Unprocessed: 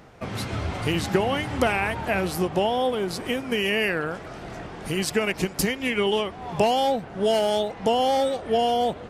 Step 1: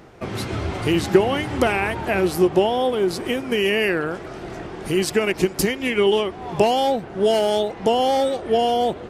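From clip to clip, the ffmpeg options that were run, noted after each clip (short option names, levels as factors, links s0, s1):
-af "equalizer=f=360:t=o:w=0.37:g=8.5,volume=1.26"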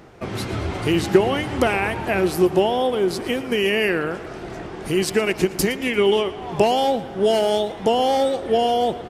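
-af "aecho=1:1:115|230|345|460|575:0.141|0.0735|0.0382|0.0199|0.0103"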